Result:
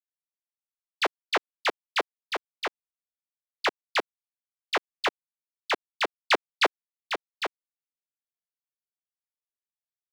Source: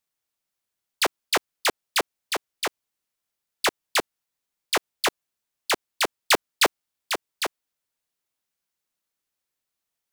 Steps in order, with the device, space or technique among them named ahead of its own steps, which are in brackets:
phone line with mismatched companding (band-pass filter 310–3,500 Hz; mu-law and A-law mismatch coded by A)
level −1 dB

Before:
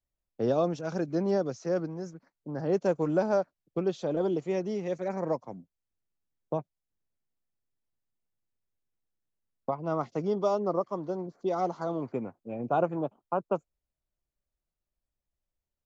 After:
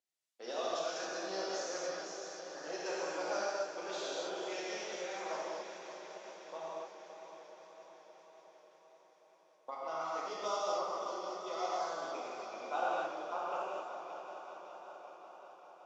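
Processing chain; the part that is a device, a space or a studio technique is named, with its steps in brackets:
first difference
multi-head tape echo (echo machine with several playback heads 191 ms, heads all three, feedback 74%, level −15 dB; tape wow and flutter)
high-pass filter 370 Hz 12 dB per octave
high-frequency loss of the air 78 metres
reverb whose tail is shaped and stops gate 300 ms flat, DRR −7 dB
level +6.5 dB

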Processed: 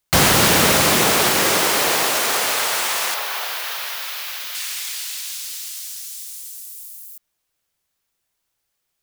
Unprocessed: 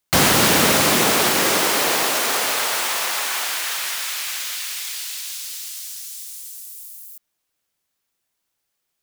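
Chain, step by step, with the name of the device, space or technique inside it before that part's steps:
low shelf boost with a cut just above (low-shelf EQ 87 Hz +7 dB; parametric band 260 Hz −3.5 dB 0.63 octaves)
0:03.14–0:04.55: octave-band graphic EQ 250/500/2,000/8,000 Hz −12/+4/−3/−11 dB
level +1 dB

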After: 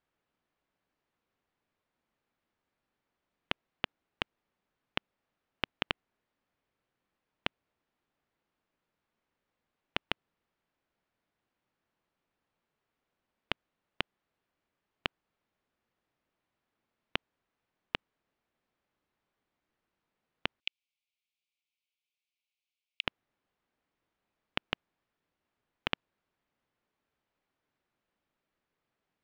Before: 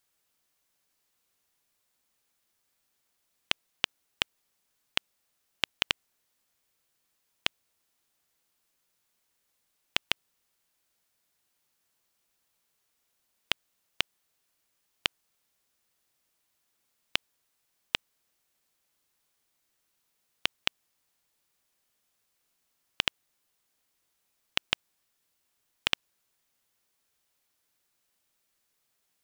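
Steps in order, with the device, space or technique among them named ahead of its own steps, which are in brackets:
phone in a pocket (low-pass filter 3,100 Hz 12 dB per octave; parametric band 230 Hz +3 dB 1.5 octaves; high-shelf EQ 2,300 Hz −9 dB)
0:20.60–0:23.04: Butterworth high-pass 2,200 Hz 96 dB per octave
level +1 dB

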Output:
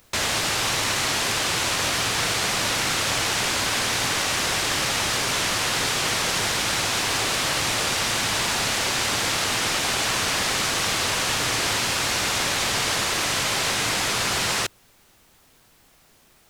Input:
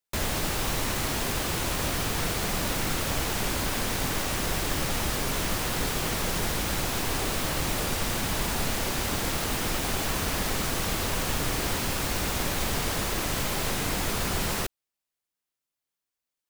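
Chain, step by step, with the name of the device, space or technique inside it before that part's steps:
low-pass filter 7,000 Hz 12 dB per octave
car interior (parametric band 110 Hz +8 dB 0.55 octaves; high-shelf EQ 3,500 Hz −8 dB; brown noise bed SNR 24 dB)
spectral tilt +4 dB per octave
level +6.5 dB

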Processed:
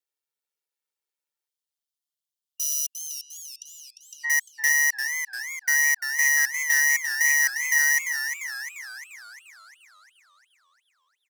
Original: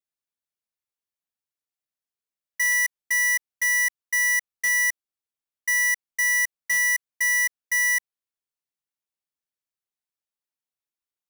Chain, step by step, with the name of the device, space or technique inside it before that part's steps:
0:02.99–0:04.30: treble cut that deepens with the level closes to 1,600 Hz, closed at −24.5 dBFS
Chebyshev high-pass filter 340 Hz, order 3
ring-modulated robot voice (ring modulation 73 Hz; comb filter 2.2 ms, depth 66%)
0:01.48–0:04.24: time-frequency box erased 220–2,800 Hz
feedback echo with a swinging delay time 348 ms, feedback 54%, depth 120 cents, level −8 dB
level +3 dB

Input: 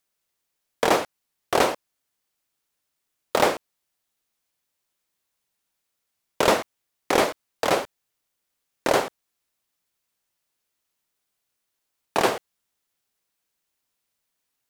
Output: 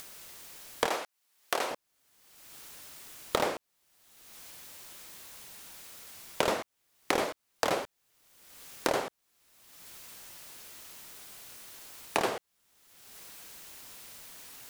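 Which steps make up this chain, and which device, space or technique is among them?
upward and downward compression (upward compression, threshold −31 dBFS; downward compressor 6 to 1, threshold −30 dBFS, peak gain reduction 15.5 dB)
0:00.86–0:01.71: high-pass filter 700 Hz 6 dB per octave
level +4 dB

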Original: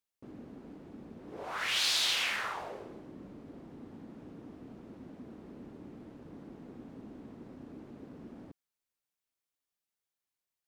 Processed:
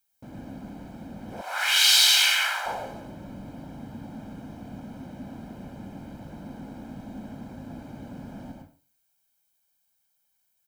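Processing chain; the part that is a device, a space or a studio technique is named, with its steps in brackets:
high-shelf EQ 9,300 Hz +11 dB
microphone above a desk (comb filter 1.3 ms, depth 73%; convolution reverb RT60 0.40 s, pre-delay 94 ms, DRR 2 dB)
0:01.41–0:02.66: high-pass filter 910 Hz 12 dB per octave
level +6 dB

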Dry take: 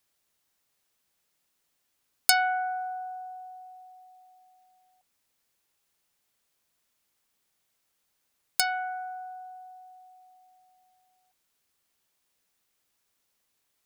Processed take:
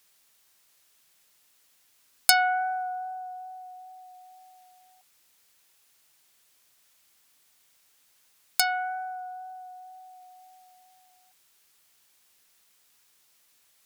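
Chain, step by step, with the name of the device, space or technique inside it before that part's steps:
noise-reduction cassette on a plain deck (one half of a high-frequency compander encoder only; tape wow and flutter 12 cents; white noise bed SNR 40 dB)
level +2 dB

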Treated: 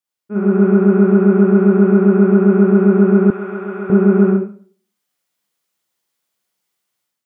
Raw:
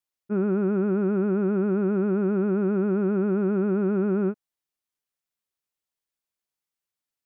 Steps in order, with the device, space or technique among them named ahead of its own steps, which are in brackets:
far laptop microphone (convolution reverb RT60 0.45 s, pre-delay 34 ms, DRR −2.5 dB; high-pass filter 130 Hz; automatic gain control gain up to 10 dB)
0:03.30–0:03.90: high-pass filter 1,400 Hz 6 dB per octave

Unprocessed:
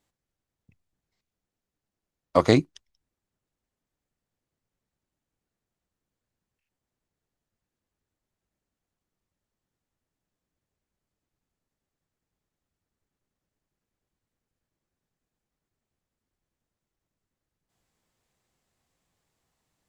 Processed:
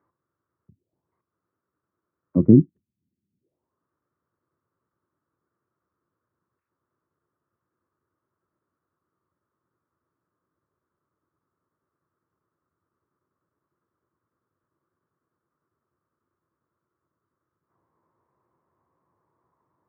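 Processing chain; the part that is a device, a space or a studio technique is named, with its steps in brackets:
envelope filter bass rig (envelope-controlled low-pass 210–1,400 Hz down, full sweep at −59 dBFS; loudspeaker in its box 85–2,100 Hz, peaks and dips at 210 Hz −4 dB, 350 Hz +7 dB, 770 Hz −10 dB)
level +4 dB

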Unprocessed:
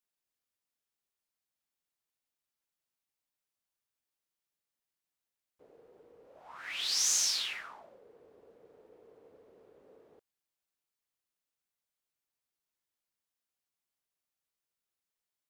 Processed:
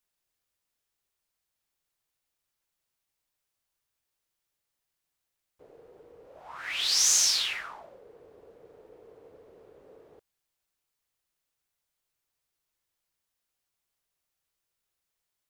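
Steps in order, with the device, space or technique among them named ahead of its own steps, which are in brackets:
low shelf boost with a cut just above (low-shelf EQ 100 Hz +7.5 dB; parametric band 230 Hz −5 dB 0.56 octaves)
level +6 dB

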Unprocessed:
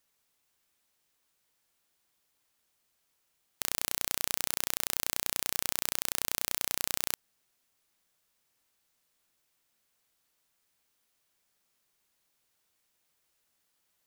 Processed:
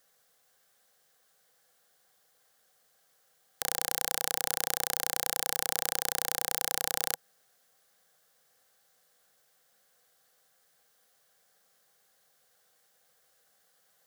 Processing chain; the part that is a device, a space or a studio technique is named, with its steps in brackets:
PA system with an anti-feedback notch (high-pass filter 160 Hz 6 dB per octave; Butterworth band-reject 900 Hz, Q 4.3; brickwall limiter −8.5 dBFS, peak gain reduction 6 dB)
thirty-one-band graphic EQ 160 Hz +4 dB, 315 Hz −11 dB, 500 Hz +10 dB, 800 Hz +11 dB, 1,600 Hz +6 dB, 2,500 Hz −7 dB
level +7 dB

